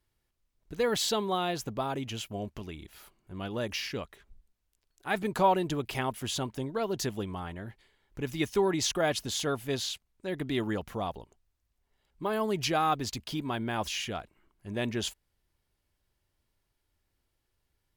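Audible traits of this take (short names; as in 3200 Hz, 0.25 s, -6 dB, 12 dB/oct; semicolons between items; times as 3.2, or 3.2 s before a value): noise floor -79 dBFS; spectral tilt -4.0 dB/oct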